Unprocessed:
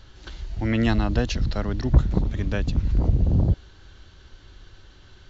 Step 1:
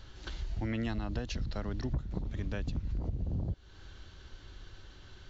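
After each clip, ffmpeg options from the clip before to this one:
ffmpeg -i in.wav -af "acompressor=threshold=-29dB:ratio=6,volume=-2.5dB" out.wav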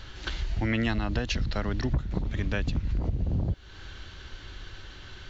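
ffmpeg -i in.wav -af "equalizer=frequency=2200:width=0.76:gain=6,volume=6.5dB" out.wav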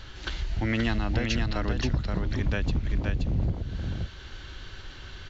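ffmpeg -i in.wav -af "aecho=1:1:525:0.596" out.wav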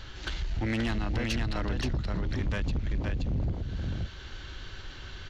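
ffmpeg -i in.wav -af "asoftclip=type=tanh:threshold=-23.5dB" out.wav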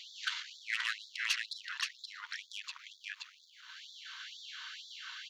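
ffmpeg -i in.wav -af "afftfilt=real='re*gte(b*sr/1024,890*pow(3400/890,0.5+0.5*sin(2*PI*2.1*pts/sr)))':imag='im*gte(b*sr/1024,890*pow(3400/890,0.5+0.5*sin(2*PI*2.1*pts/sr)))':win_size=1024:overlap=0.75,volume=2.5dB" out.wav

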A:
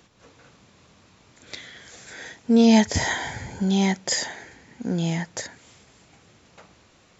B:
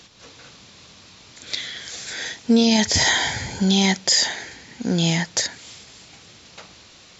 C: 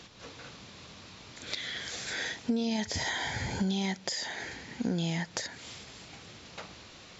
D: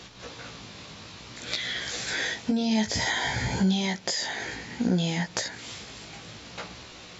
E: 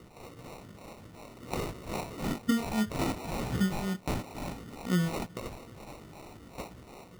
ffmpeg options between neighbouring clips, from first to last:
ffmpeg -i in.wav -af "equalizer=frequency=4400:width_type=o:width=1.7:gain=11.5,alimiter=level_in=11dB:limit=-1dB:release=50:level=0:latency=1,volume=-7dB" out.wav
ffmpeg -i in.wav -af "acompressor=threshold=-28dB:ratio=6,highshelf=frequency=4000:gain=-8.5" out.wav
ffmpeg -i in.wav -af "flanger=delay=16:depth=2.7:speed=0.58,volume=8.5dB" out.wav
ffmpeg -i in.wav -filter_complex "[0:a]acrossover=split=630[link_01][link_02];[link_01]aeval=exprs='val(0)*(1-1/2+1/2*cos(2*PI*2.8*n/s))':channel_layout=same[link_03];[link_02]aeval=exprs='val(0)*(1-1/2-1/2*cos(2*PI*2.8*n/s))':channel_layout=same[link_04];[link_03][link_04]amix=inputs=2:normalize=0,acrusher=samples=27:mix=1:aa=0.000001" out.wav

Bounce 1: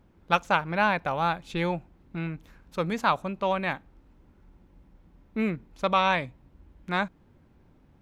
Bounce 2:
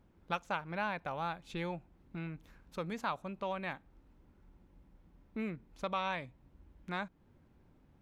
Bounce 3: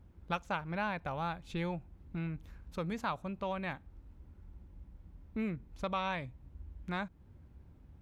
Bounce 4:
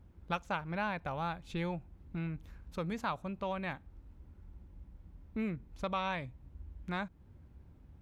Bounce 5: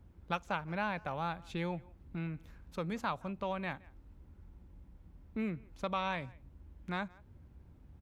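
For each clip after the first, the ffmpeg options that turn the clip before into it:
ffmpeg -i in.wav -af "acompressor=threshold=-37dB:ratio=1.5,volume=-6dB" out.wav
ffmpeg -i in.wav -af "equalizer=frequency=66:width_type=o:width=1.8:gain=14.5" out.wav
ffmpeg -i in.wav -af anull out.wav
ffmpeg -i in.wav -filter_complex "[0:a]acrossover=split=130[link_01][link_02];[link_01]alimiter=level_in=24.5dB:limit=-24dB:level=0:latency=1:release=190,volume=-24.5dB[link_03];[link_03][link_02]amix=inputs=2:normalize=0,asplit=2[link_04][link_05];[link_05]adelay=170,highpass=300,lowpass=3400,asoftclip=type=hard:threshold=-26.5dB,volume=-23dB[link_06];[link_04][link_06]amix=inputs=2:normalize=0" out.wav

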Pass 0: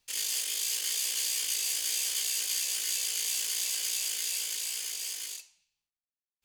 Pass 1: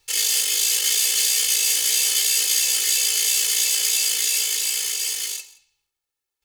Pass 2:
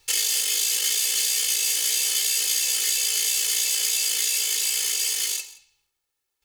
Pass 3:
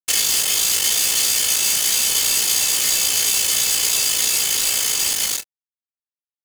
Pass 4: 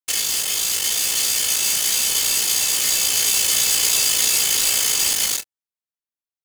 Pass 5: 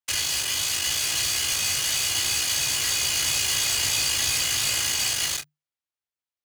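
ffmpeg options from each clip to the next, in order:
ffmpeg -i in.wav -af "aecho=1:1:2.3:0.82,aecho=1:1:173:0.0841,volume=9dB" out.wav
ffmpeg -i in.wav -af "acompressor=threshold=-25dB:ratio=4,volume=4dB" out.wav
ffmpeg -i in.wav -filter_complex "[0:a]acrusher=bits=3:mix=0:aa=0.5,asplit=2[link_01][link_02];[link_02]adelay=28,volume=-12dB[link_03];[link_01][link_03]amix=inputs=2:normalize=0,volume=4.5dB" out.wav
ffmpeg -i in.wav -af "dynaudnorm=framelen=430:gausssize=5:maxgain=11.5dB,volume=-3.5dB" out.wav
ffmpeg -i in.wav -filter_complex "[0:a]asplit=2[link_01][link_02];[link_02]highpass=frequency=720:poles=1,volume=14dB,asoftclip=type=tanh:threshold=-4dB[link_03];[link_01][link_03]amix=inputs=2:normalize=0,lowpass=frequency=4200:poles=1,volume=-6dB,lowshelf=frequency=110:width_type=q:width=1.5:gain=12,afreqshift=-150,volume=-6.5dB" out.wav

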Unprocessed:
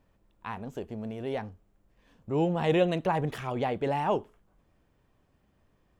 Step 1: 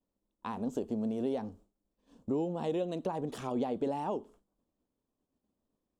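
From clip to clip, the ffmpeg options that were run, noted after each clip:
ffmpeg -i in.wav -af "acompressor=threshold=-36dB:ratio=6,equalizer=frequency=125:width_type=o:width=1:gain=-4,equalizer=frequency=250:width_type=o:width=1:gain=12,equalizer=frequency=500:width_type=o:width=1:gain=5,equalizer=frequency=1000:width_type=o:width=1:gain=4,equalizer=frequency=2000:width_type=o:width=1:gain=-8,equalizer=frequency=4000:width_type=o:width=1:gain=5,equalizer=frequency=8000:width_type=o:width=1:gain=9,agate=range=-33dB:threshold=-50dB:ratio=3:detection=peak,volume=-2dB" out.wav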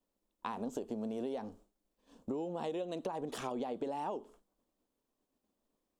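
ffmpeg -i in.wav -af "equalizer=frequency=94:width=0.45:gain=-10.5,acompressor=threshold=-38dB:ratio=6,volume=3.5dB" out.wav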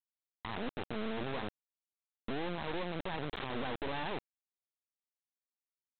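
ffmpeg -i in.wav -af "alimiter=level_in=8.5dB:limit=-24dB:level=0:latency=1:release=22,volume=-8.5dB,aresample=8000,acrusher=bits=4:dc=4:mix=0:aa=0.000001,aresample=44100,volume=5.5dB" out.wav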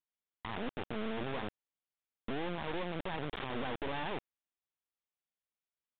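ffmpeg -i in.wav -af "aresample=8000,aresample=44100" out.wav

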